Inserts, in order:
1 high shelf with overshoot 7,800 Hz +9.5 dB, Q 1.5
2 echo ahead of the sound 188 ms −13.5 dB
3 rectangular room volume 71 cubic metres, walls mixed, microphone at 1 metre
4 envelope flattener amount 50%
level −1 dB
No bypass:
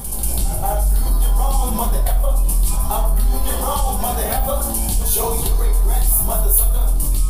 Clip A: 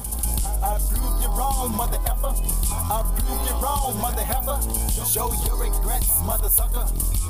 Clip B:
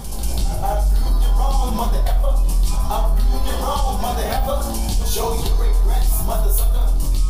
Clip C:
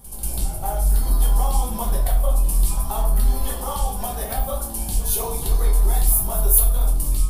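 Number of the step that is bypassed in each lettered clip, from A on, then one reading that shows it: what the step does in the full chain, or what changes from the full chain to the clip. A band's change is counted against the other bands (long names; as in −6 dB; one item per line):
3, change in crest factor +3.5 dB
1, 8 kHz band −8.5 dB
4, change in crest factor +2.5 dB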